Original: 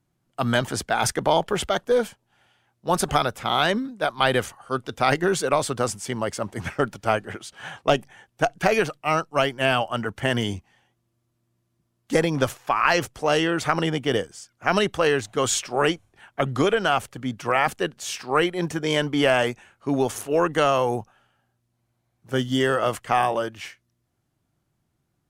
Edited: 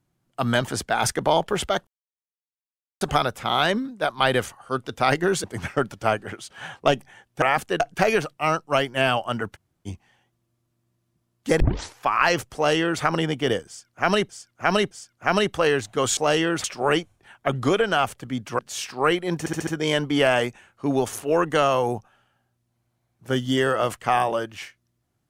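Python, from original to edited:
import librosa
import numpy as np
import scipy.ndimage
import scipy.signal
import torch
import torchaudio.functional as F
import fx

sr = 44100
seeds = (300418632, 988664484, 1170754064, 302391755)

y = fx.edit(x, sr, fx.silence(start_s=1.87, length_s=1.14),
    fx.cut(start_s=5.44, length_s=1.02),
    fx.room_tone_fill(start_s=10.19, length_s=0.32, crossfade_s=0.04),
    fx.tape_start(start_s=12.24, length_s=0.39),
    fx.duplicate(start_s=13.19, length_s=0.47, to_s=15.57),
    fx.repeat(start_s=14.31, length_s=0.62, count=3),
    fx.move(start_s=17.52, length_s=0.38, to_s=8.44),
    fx.stutter(start_s=18.7, slice_s=0.07, count=5), tone=tone)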